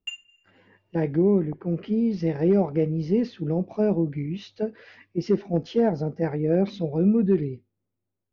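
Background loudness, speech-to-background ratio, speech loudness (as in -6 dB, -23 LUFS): -38.5 LUFS, 13.5 dB, -25.0 LUFS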